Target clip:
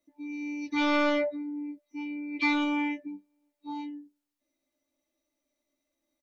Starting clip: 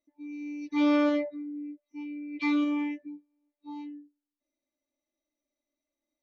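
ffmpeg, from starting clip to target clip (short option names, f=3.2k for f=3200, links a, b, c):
-filter_complex "[0:a]acrossover=split=130|1000[a][b][c];[b]asoftclip=type=tanh:threshold=-29dB[d];[a][d][c]amix=inputs=3:normalize=0,asplit=2[e][f];[f]adelay=15,volume=-7dB[g];[e][g]amix=inputs=2:normalize=0,volume=5.5dB"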